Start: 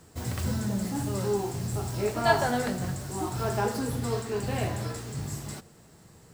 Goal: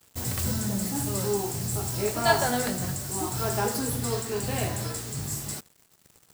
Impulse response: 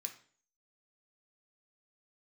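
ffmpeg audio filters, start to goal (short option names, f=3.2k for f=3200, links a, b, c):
-af "crystalizer=i=2:c=0,acrusher=bits=6:mix=0:aa=0.5"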